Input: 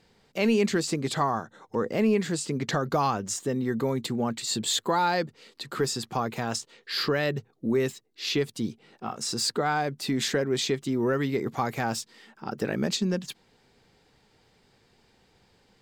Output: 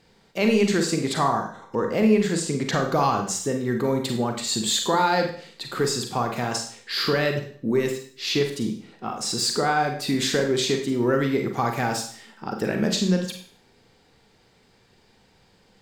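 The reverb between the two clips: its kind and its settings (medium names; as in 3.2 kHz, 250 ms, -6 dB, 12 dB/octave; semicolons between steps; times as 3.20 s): Schroeder reverb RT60 0.5 s, combs from 33 ms, DRR 3.5 dB; trim +2.5 dB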